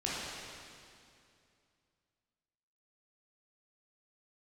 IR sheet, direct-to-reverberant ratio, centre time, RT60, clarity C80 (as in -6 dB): -7.5 dB, 0.164 s, 2.5 s, -1.5 dB